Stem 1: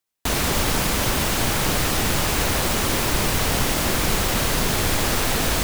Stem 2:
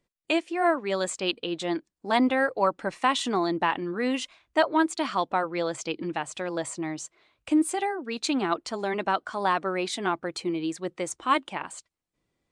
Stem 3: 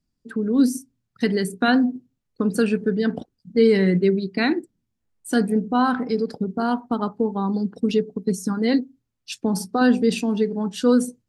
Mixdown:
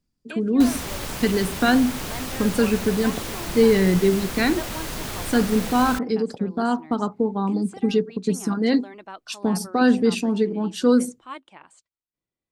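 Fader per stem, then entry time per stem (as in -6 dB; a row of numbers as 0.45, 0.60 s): -10.0, -13.5, 0.0 dB; 0.35, 0.00, 0.00 s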